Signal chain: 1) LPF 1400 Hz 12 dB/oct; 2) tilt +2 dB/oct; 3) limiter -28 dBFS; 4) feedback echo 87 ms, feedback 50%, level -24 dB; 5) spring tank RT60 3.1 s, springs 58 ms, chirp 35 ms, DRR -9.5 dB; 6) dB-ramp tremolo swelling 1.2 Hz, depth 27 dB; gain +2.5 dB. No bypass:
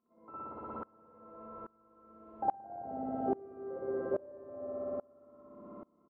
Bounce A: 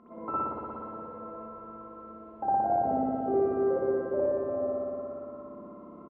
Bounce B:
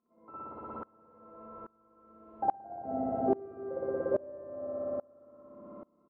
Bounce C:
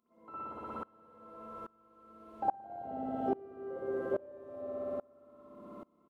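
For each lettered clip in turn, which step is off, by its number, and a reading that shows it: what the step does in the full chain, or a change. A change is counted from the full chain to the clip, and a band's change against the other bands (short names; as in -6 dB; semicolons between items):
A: 6, crest factor change -7.0 dB; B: 3, loudness change +4.0 LU; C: 1, 2 kHz band +4.0 dB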